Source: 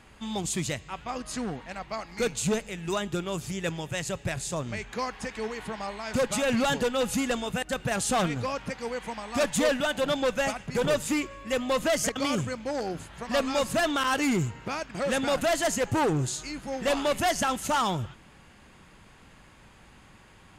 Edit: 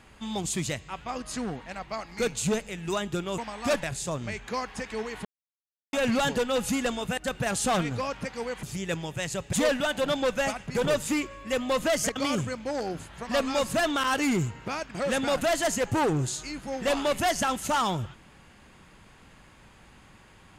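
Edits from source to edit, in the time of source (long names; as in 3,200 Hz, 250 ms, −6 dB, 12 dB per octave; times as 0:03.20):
0:03.38–0:04.28: swap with 0:09.08–0:09.53
0:05.70–0:06.38: silence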